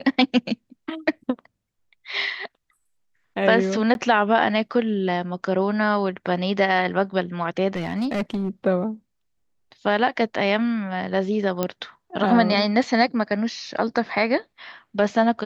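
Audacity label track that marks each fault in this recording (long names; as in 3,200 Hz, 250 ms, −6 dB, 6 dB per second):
3.940000	3.950000	drop-out 11 ms
7.750000	8.490000	clipping −20.5 dBFS
11.630000	11.630000	click −9 dBFS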